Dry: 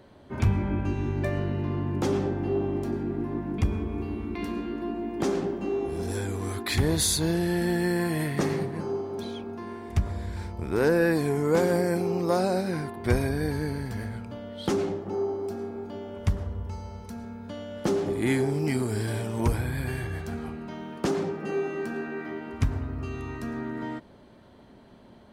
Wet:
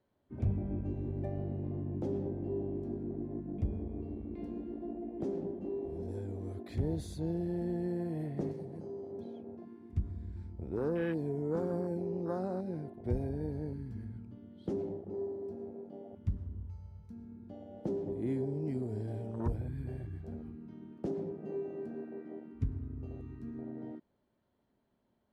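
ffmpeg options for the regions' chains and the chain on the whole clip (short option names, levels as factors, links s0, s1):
-filter_complex "[0:a]asettb=1/sr,asplit=3[s0][s1][s2];[s0]atrim=end=8.514[s3];[s1]atrim=start=8.51:end=9.12,asetpts=PTS-STARTPTS,afade=t=in:d=0.004:c=qsin,afade=t=out:st=0.606:d=0.004:c=qsin,bass=f=250:g=-1,treble=f=4000:g=11,acompressor=threshold=0.0316:ratio=3:attack=3.2:release=140:knee=1:detection=peak[s4];[s2]atrim=start=9.116[s5];[s3][s4]acrossfade=d=0.004:c1=hsin:c2=qsin[s6];[s6][s5]acrossfade=d=0.004:c1=qsin:c2=hsin,afwtdn=0.0398,highshelf=f=6100:g=-7,acrossover=split=390|3000[s7][s8][s9];[s8]acompressor=threshold=0.0224:ratio=2[s10];[s7][s10][s9]amix=inputs=3:normalize=0,volume=0.376"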